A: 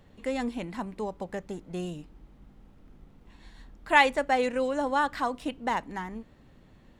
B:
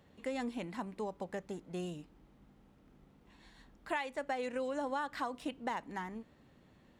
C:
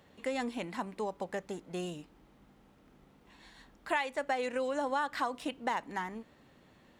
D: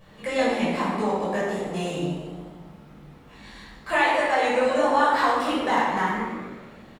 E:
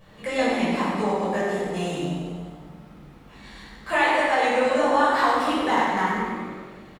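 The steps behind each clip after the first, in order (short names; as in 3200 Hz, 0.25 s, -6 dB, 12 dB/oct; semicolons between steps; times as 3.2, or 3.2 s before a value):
HPF 120 Hz 6 dB/oct; compressor 16:1, threshold -28 dBFS, peak gain reduction 15 dB; gain -4.5 dB
low shelf 300 Hz -7 dB; gain +5.5 dB
vibrato 1.5 Hz 38 cents; frequency-shifting echo 0.114 s, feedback 57%, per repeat +91 Hz, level -12 dB; reverb RT60 1.1 s, pre-delay 8 ms, DRR -9 dB
feedback echo 98 ms, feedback 55%, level -7.5 dB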